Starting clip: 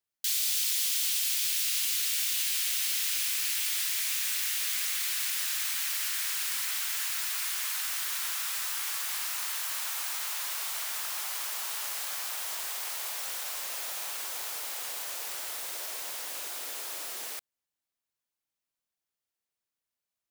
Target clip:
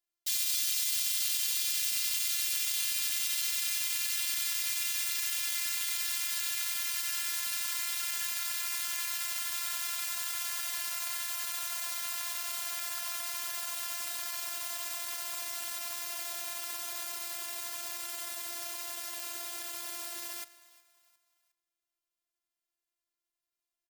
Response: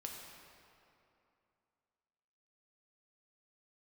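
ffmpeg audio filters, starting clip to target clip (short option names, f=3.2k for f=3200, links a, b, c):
-filter_complex "[0:a]asplit=4[a][b][c][d];[b]adelay=303,afreqshift=89,volume=-21dB[e];[c]adelay=606,afreqshift=178,volume=-28.7dB[f];[d]adelay=909,afreqshift=267,volume=-36.5dB[g];[a][e][f][g]amix=inputs=4:normalize=0,asplit=2[h][i];[1:a]atrim=start_sample=2205,asetrate=79380,aresample=44100[j];[i][j]afir=irnorm=-1:irlink=0,volume=-4.5dB[k];[h][k]amix=inputs=2:normalize=0,atempo=0.85,afftfilt=real='hypot(re,im)*cos(PI*b)':imag='0':win_size=512:overlap=0.75"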